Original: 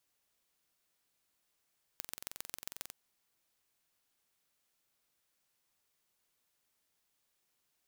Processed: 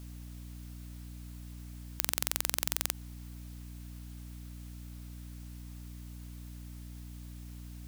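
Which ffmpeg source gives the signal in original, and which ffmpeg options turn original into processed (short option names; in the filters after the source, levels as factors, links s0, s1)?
-f lavfi -i "aevalsrc='0.266*eq(mod(n,1986),0)*(0.5+0.5*eq(mod(n,5958),0))':d=0.91:s=44100"
-af "aeval=exprs='val(0)+0.000562*(sin(2*PI*60*n/s)+sin(2*PI*2*60*n/s)/2+sin(2*PI*3*60*n/s)/3+sin(2*PI*4*60*n/s)/4+sin(2*PI*5*60*n/s)/5)':c=same,alimiter=level_in=11.2:limit=0.891:release=50:level=0:latency=1"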